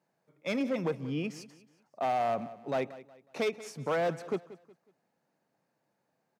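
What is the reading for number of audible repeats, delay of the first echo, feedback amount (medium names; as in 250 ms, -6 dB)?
2, 183 ms, 34%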